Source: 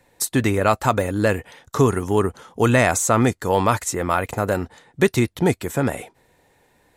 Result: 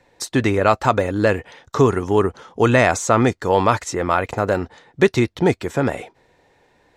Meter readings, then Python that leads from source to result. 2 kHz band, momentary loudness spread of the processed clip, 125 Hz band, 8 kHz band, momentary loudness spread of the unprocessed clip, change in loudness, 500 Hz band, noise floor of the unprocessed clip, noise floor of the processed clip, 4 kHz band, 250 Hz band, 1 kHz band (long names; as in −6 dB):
+2.0 dB, 8 LU, 0.0 dB, −4.5 dB, 8 LU, +1.5 dB, +3.0 dB, −61 dBFS, −60 dBFS, +1.5 dB, +1.0 dB, +2.5 dB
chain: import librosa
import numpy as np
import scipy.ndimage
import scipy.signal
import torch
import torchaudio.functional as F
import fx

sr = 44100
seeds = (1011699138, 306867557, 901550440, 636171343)

y = fx.curve_eq(x, sr, hz=(230.0, 360.0, 5600.0, 11000.0), db=(0, 3, 1, -14))